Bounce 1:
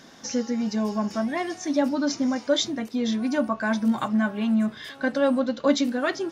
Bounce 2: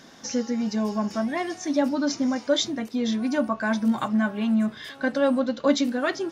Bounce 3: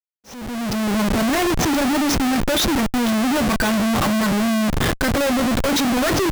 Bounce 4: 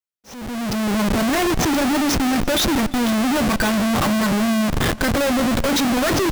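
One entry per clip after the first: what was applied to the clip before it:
no processing that can be heard
comparator with hysteresis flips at −35 dBFS; volume swells 773 ms; level +6.5 dB
feedback echo with a swinging delay time 173 ms, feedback 80%, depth 127 cents, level −22 dB

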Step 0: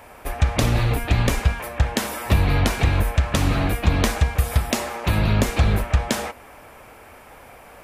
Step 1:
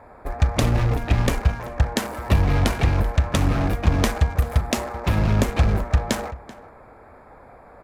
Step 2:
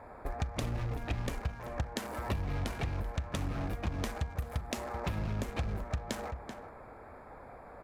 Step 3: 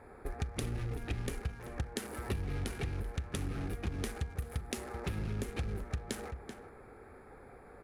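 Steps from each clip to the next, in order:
adaptive Wiener filter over 15 samples; slap from a distant wall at 66 metres, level −17 dB
downward compressor 4 to 1, threshold −30 dBFS, peak gain reduction 15.5 dB; level −3.5 dB
thirty-one-band graphic EQ 400 Hz +7 dB, 630 Hz −10 dB, 1,000 Hz −9 dB, 10,000 Hz +10 dB; level −2 dB

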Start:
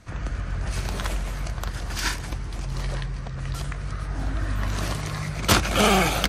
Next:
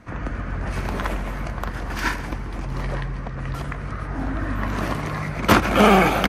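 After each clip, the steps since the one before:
octave-band graphic EQ 250/500/1,000/2,000/4,000/8,000 Hz +9/+4/+6/+5/−4/−7 dB
repeating echo 134 ms, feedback 48%, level −17 dB
level −1 dB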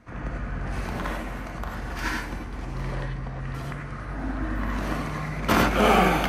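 reverb whose tail is shaped and stops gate 120 ms rising, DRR −0.5 dB
level −7 dB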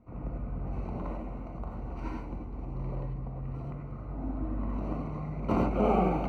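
moving average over 26 samples
level −4 dB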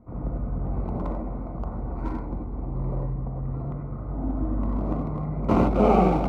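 adaptive Wiener filter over 15 samples
level +7 dB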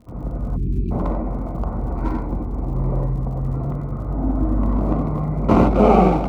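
time-frequency box erased 0:00.56–0:00.91, 430–2,300 Hz
automatic gain control gain up to 5 dB
surface crackle 62 per second −43 dBFS
level +2 dB

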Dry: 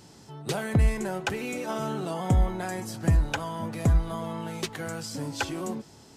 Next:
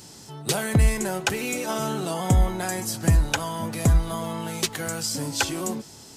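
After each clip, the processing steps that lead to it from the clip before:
high-shelf EQ 4,000 Hz +11 dB
level +3 dB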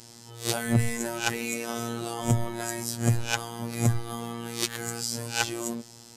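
peak hold with a rise ahead of every peak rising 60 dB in 0.30 s
phases set to zero 117 Hz
level −2.5 dB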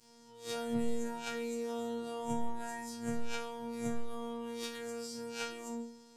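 resonators tuned to a chord D#3 fifth, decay 0.48 s
level +1.5 dB

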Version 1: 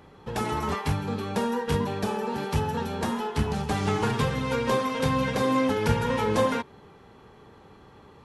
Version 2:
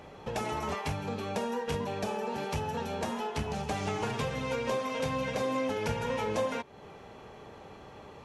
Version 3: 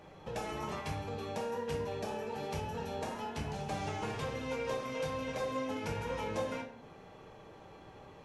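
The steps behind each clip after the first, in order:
graphic EQ with 15 bands 630 Hz +9 dB, 2,500 Hz +6 dB, 6,300 Hz +6 dB; downward compressor 2 to 1, threshold −37 dBFS, peak gain reduction 12 dB
rectangular room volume 91 cubic metres, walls mixed, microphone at 0.61 metres; level −7 dB

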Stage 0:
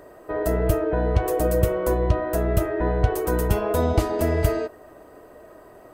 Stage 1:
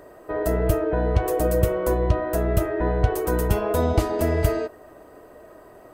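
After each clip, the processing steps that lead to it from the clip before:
no processing that can be heard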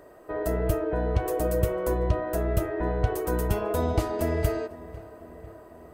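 feedback echo with a low-pass in the loop 498 ms, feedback 67%, low-pass 2,700 Hz, level −18 dB
level −4.5 dB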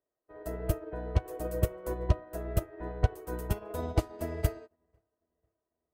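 expander for the loud parts 2.5 to 1, over −45 dBFS

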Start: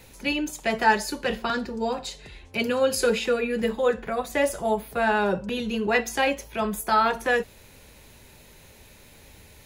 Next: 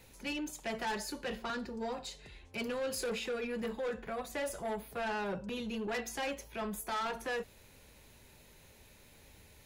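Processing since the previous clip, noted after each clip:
soft clipping −23.5 dBFS, distortion −9 dB
level −8.5 dB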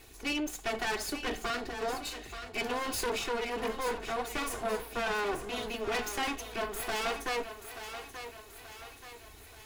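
lower of the sound and its delayed copy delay 2.7 ms
feedback echo with a high-pass in the loop 881 ms, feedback 52%, high-pass 340 Hz, level −9.5 dB
level +6 dB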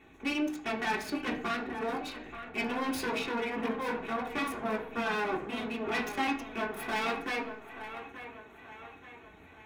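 adaptive Wiener filter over 9 samples
convolution reverb RT60 0.55 s, pre-delay 3 ms, DRR −1 dB
level −4.5 dB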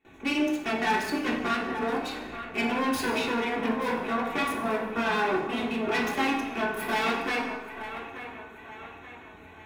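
noise gate with hold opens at −49 dBFS
dense smooth reverb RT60 1.1 s, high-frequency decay 0.8×, DRR 3 dB
level +3.5 dB

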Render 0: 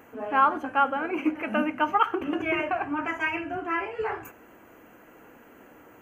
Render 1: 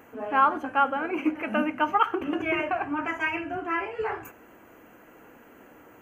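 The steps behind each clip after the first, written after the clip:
no processing that can be heard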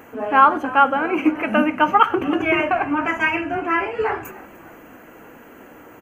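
echo with shifted repeats 301 ms, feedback 54%, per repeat −59 Hz, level −20.5 dB
level +8 dB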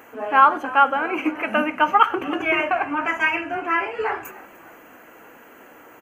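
low-shelf EQ 310 Hz −12 dB

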